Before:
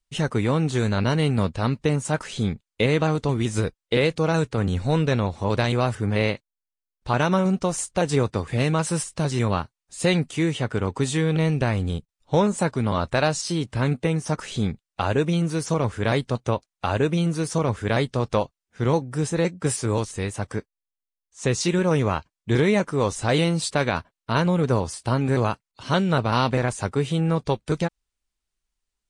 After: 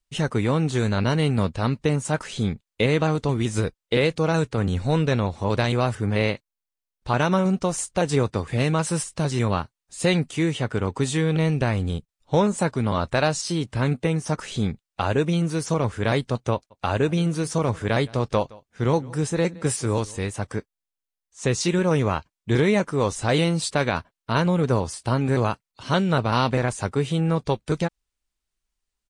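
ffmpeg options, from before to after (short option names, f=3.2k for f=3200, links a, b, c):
-filter_complex "[0:a]asplit=3[a][b][c];[a]afade=t=out:st=16.7:d=0.02[d];[b]aecho=1:1:167:0.0708,afade=t=in:st=16.7:d=0.02,afade=t=out:st=20.26:d=0.02[e];[c]afade=t=in:st=20.26:d=0.02[f];[d][e][f]amix=inputs=3:normalize=0"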